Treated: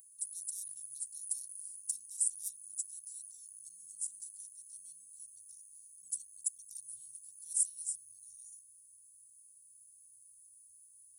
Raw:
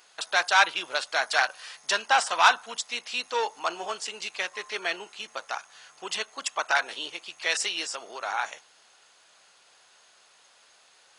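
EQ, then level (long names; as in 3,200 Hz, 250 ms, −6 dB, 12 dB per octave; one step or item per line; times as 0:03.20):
Chebyshev band-stop filter 100–9,500 Hz, order 4
high-shelf EQ 3,200 Hz +11.5 dB
+2.5 dB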